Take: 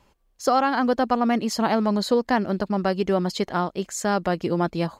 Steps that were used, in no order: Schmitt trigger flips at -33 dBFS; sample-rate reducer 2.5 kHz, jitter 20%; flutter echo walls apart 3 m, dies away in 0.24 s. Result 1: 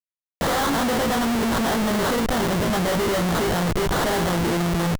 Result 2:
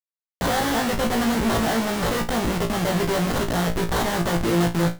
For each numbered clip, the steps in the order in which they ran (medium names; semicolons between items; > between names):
flutter echo > Schmitt trigger > sample-rate reducer; Schmitt trigger > sample-rate reducer > flutter echo